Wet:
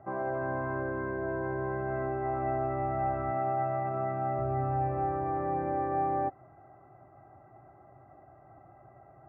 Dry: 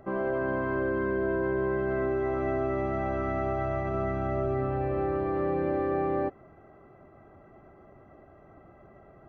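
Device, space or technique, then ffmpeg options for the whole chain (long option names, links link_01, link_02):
bass cabinet: -filter_complex "[0:a]asettb=1/sr,asplit=3[link_01][link_02][link_03];[link_01]atrim=end=3.314[link_04];[link_02]atrim=start=3.31:end=4.39,asetpts=PTS-STARTPTS,afade=type=in:duration=0.004:curve=qsin,afade=type=out:start_time=1.076:duration=0.004:curve=qsin,highpass=frequency=130:width=0.5412,highpass=frequency=130:width=1.3066[link_05];[link_03]atrim=start=4.386[link_06];[link_04][link_05]acrossfade=duration=0.004:curve1=hsin:curve2=qsin[link_07];[link_07][link_06]acrossfade=duration=0.004:curve1=qsin:curve2=hsin,highpass=69,equalizer=frequency=120:width_type=q:width=4:gain=9,equalizer=frequency=210:width_type=q:width=4:gain=-9,equalizer=frequency=450:width_type=q:width=4:gain=-7,equalizer=frequency=770:width_type=q:width=4:gain=10,lowpass=frequency=2100:width=0.5412,lowpass=frequency=2100:width=1.3066,volume=-4dB"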